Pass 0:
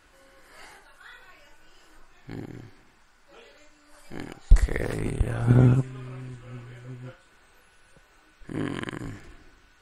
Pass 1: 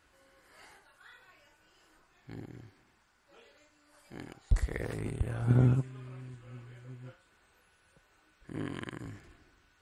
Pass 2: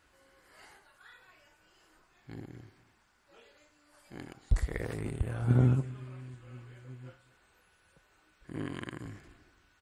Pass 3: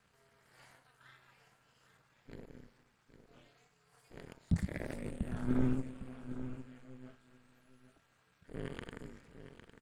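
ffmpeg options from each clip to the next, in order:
-af "highpass=43,equalizer=f=88:t=o:w=1.2:g=3,volume=0.398"
-af "aecho=1:1:234:0.0841"
-af "aeval=exprs='if(lt(val(0),0),0.447*val(0),val(0))':c=same,aeval=exprs='val(0)*sin(2*PI*130*n/s)':c=same,aecho=1:1:806:0.266"

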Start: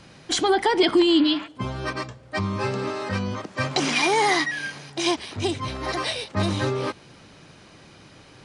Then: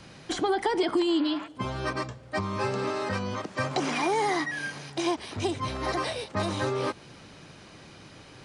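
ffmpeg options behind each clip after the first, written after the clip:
-filter_complex "[0:a]acrossover=split=390|1600|5800[s0][s1][s2][s3];[s0]acompressor=threshold=0.0251:ratio=4[s4];[s1]acompressor=threshold=0.0501:ratio=4[s5];[s2]acompressor=threshold=0.01:ratio=4[s6];[s3]acompressor=threshold=0.00562:ratio=4[s7];[s4][s5][s6][s7]amix=inputs=4:normalize=0"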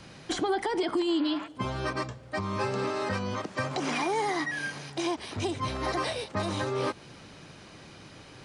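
-af "alimiter=limit=0.106:level=0:latency=1:release=146"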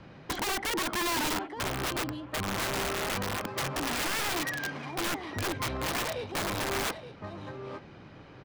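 -af "adynamicsmooth=sensitivity=2.5:basefreq=2400,aecho=1:1:872:0.282,aeval=exprs='(mod(18.8*val(0)+1,2)-1)/18.8':c=same"

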